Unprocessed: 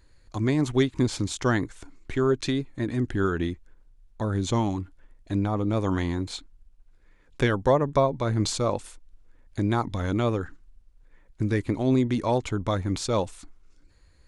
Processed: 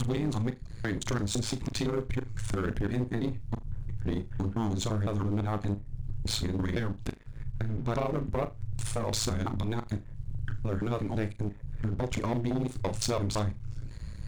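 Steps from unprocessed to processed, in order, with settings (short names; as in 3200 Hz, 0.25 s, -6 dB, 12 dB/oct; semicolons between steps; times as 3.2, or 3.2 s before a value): slices in reverse order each 0.169 s, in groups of 5; low shelf 120 Hz +9 dB; in parallel at +0.5 dB: limiter -17.5 dBFS, peak gain reduction 9.5 dB; on the sum: compressor 6:1, threshold -28 dBFS, peak gain reduction 15.5 dB; sample leveller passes 3; AM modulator 110 Hz, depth 80%; on a send: flutter echo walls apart 6.8 m, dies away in 0.21 s; on the sum: gain -4 dB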